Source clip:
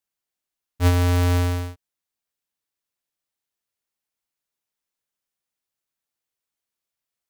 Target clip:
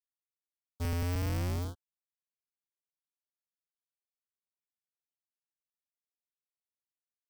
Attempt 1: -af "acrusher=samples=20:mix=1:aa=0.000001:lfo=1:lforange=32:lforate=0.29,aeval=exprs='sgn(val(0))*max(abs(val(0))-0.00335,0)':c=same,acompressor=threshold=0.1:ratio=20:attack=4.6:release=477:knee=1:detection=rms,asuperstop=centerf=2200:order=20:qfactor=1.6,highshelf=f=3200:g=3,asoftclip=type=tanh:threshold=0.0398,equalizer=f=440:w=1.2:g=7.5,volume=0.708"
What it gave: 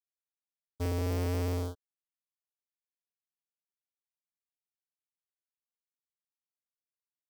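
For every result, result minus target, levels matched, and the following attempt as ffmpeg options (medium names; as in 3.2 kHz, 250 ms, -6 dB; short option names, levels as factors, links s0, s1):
compression: peak gain reduction +6.5 dB; decimation with a swept rate: distortion -8 dB; 500 Hz band +5.5 dB
-af "acrusher=samples=20:mix=1:aa=0.000001:lfo=1:lforange=32:lforate=0.29,aeval=exprs='sgn(val(0))*max(abs(val(0))-0.00335,0)':c=same,asuperstop=centerf=2200:order=20:qfactor=1.6,highshelf=f=3200:g=3,asoftclip=type=tanh:threshold=0.0398,equalizer=f=440:w=1.2:g=7.5,volume=0.708"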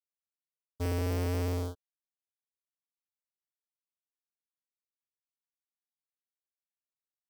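decimation with a swept rate: distortion -8 dB; 500 Hz band +5.5 dB
-af "acrusher=samples=72:mix=1:aa=0.000001:lfo=1:lforange=115:lforate=0.29,aeval=exprs='sgn(val(0))*max(abs(val(0))-0.00335,0)':c=same,asuperstop=centerf=2200:order=20:qfactor=1.6,highshelf=f=3200:g=3,asoftclip=type=tanh:threshold=0.0398,equalizer=f=440:w=1.2:g=7.5,volume=0.708"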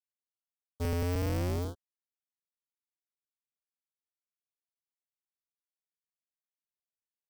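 500 Hz band +5.0 dB
-af "acrusher=samples=72:mix=1:aa=0.000001:lfo=1:lforange=115:lforate=0.29,aeval=exprs='sgn(val(0))*max(abs(val(0))-0.00335,0)':c=same,asuperstop=centerf=2200:order=20:qfactor=1.6,highshelf=f=3200:g=3,asoftclip=type=tanh:threshold=0.0398,volume=0.708"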